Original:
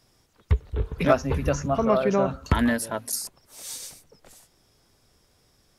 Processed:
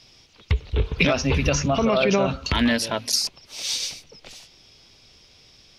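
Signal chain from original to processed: treble shelf 6.8 kHz -12 dB; peak limiter -17.5 dBFS, peak gain reduction 10.5 dB; high-order bell 3.7 kHz +13.5 dB; trim +5.5 dB

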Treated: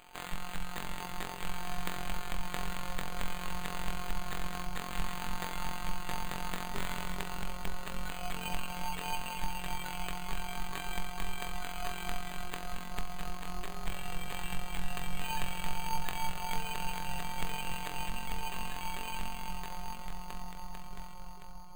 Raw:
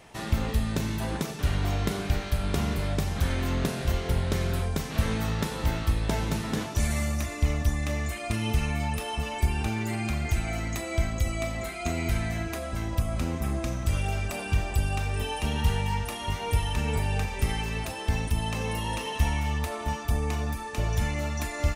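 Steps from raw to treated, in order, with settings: fade out at the end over 4.01 s; amplifier tone stack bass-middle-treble 10-0-10; static phaser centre 490 Hz, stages 6; in parallel at -1 dB: compression, threshold -43 dBFS, peak gain reduction 14 dB; on the sum: bucket-brigade echo 285 ms, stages 4096, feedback 84%, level -5 dB; robot voice 179 Hz; treble shelf 7 kHz -11.5 dB; careless resampling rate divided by 8×, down none, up hold; trim +4.5 dB

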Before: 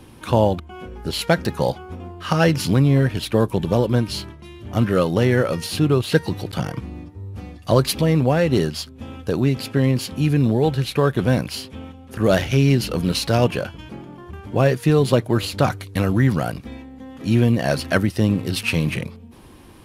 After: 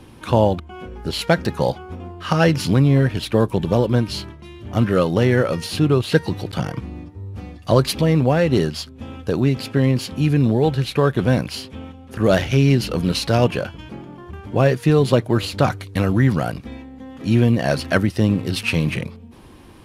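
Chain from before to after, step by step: treble shelf 10 kHz -7.5 dB; trim +1 dB

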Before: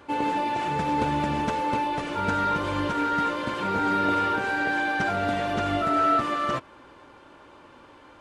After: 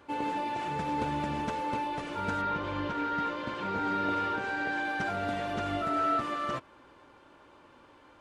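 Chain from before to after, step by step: 2.41–4.83 s: low-pass 4 kHz -> 8.5 kHz 12 dB/octave; trim -6.5 dB

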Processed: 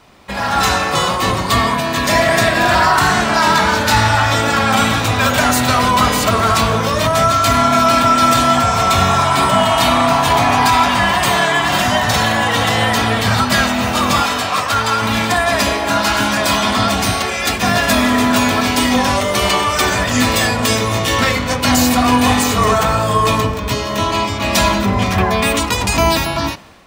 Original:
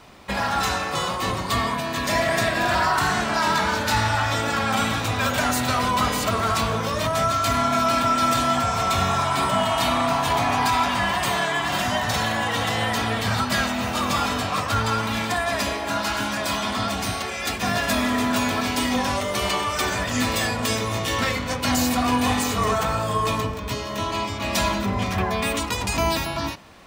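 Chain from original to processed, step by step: level rider gain up to 11.5 dB; 14.22–15.02 s: bass shelf 330 Hz -10 dB

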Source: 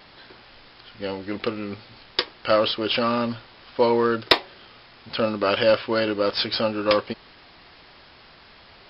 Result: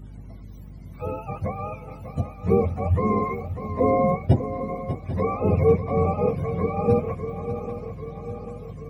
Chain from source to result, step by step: spectrum inverted on a logarithmic axis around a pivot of 500 Hz; hum 50 Hz, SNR 16 dB; shuffle delay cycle 792 ms, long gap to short 3:1, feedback 56%, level -11 dB

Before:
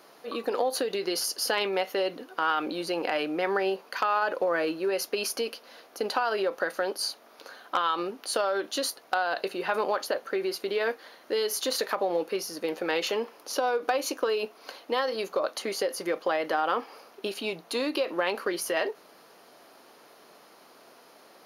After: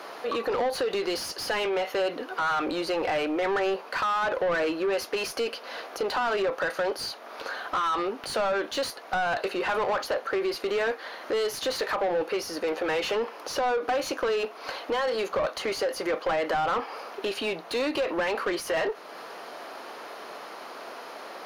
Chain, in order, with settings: in parallel at +2.5 dB: compression, threshold -43 dBFS, peak gain reduction 20.5 dB; on the sum: overdrive pedal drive 24 dB, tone 1.9 kHz, clips at -10 dBFS; trim -7.5 dB

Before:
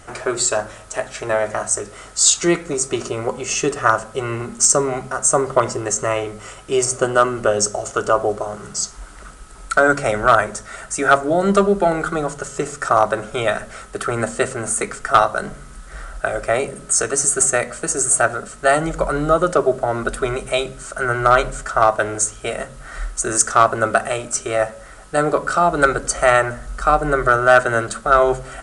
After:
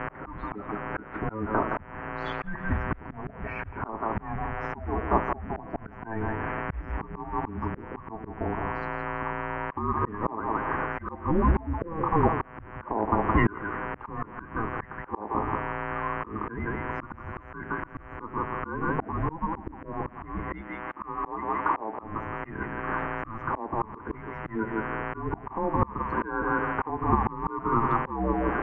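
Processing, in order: coarse spectral quantiser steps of 30 dB; on a send: thinning echo 167 ms, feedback 23%, high-pass 600 Hz, level -9 dB; on the sum: mains buzz 120 Hz, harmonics 29, -35 dBFS -1 dB/octave; mistuned SSB -330 Hz 300–2200 Hz; compression 8:1, threshold -18 dBFS, peak gain reduction 11.5 dB; slow attack 484 ms; 20.61–22.03 s: bass shelf 180 Hz -12 dB; trim +4.5 dB

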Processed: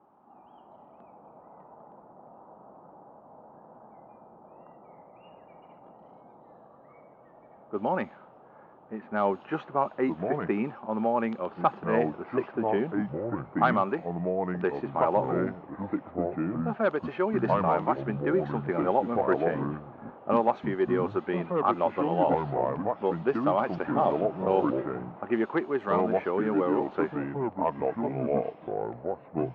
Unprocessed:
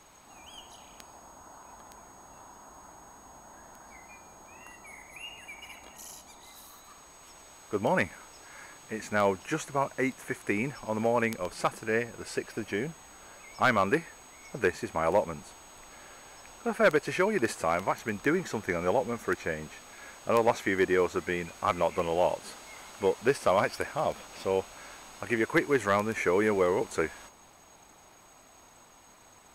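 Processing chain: level-controlled noise filter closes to 880 Hz, open at -22 dBFS; ten-band graphic EQ 500 Hz -7 dB, 1 kHz -3 dB, 2 kHz -6 dB; gain riding within 4 dB 0.5 s; cabinet simulation 180–3000 Hz, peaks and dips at 220 Hz +6 dB, 380 Hz +7 dB, 560 Hz +6 dB, 810 Hz +10 dB, 1.2 kHz +6 dB, 2.2 kHz -5 dB; ever faster or slower copies 340 ms, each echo -4 st, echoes 2

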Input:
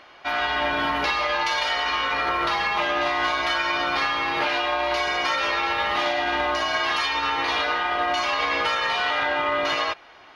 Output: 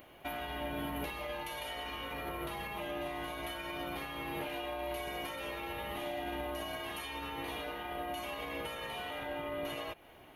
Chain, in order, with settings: compression 10:1, threshold -28 dBFS, peak gain reduction 9 dB; FFT filter 160 Hz 0 dB, 640 Hz -9 dB, 1.3 kHz -19 dB, 3 kHz -12 dB, 5.1 kHz -24 dB, 12 kHz +15 dB; trim +4 dB

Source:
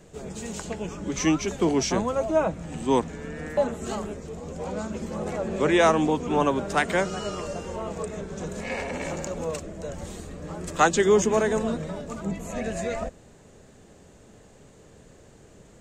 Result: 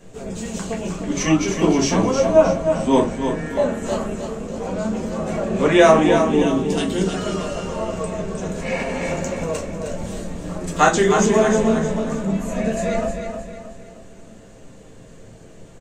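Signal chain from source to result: time-frequency box 6.25–7.07 s, 500–2600 Hz -15 dB; on a send: feedback delay 311 ms, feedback 41%, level -7 dB; on the sum: simulated room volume 120 m³, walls furnished, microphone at 1.7 m; trim +1 dB

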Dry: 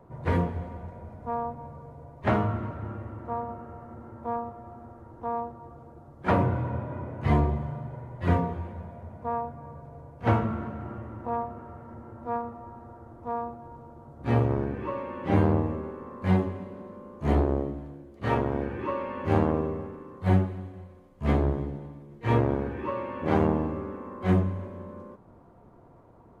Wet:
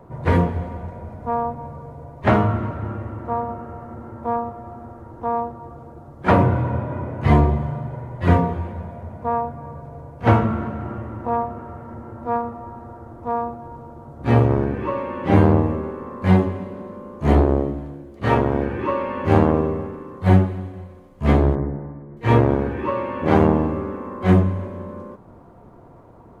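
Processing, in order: 21.55–22.17 s: steep low-pass 2 kHz 48 dB/octave; trim +8 dB

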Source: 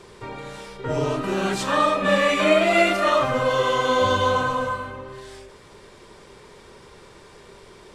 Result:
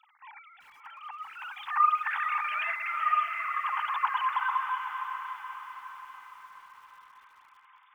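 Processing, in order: formants replaced by sine waves; steep high-pass 820 Hz 96 dB/octave; on a send: echo that smears into a reverb 597 ms, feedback 52%, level -8 dB; 2.39–2.91 s: on the sum: compressor with a negative ratio -27 dBFS, ratio -1; bit-crushed delay 381 ms, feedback 35%, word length 8-bit, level -12 dB; trim -5.5 dB

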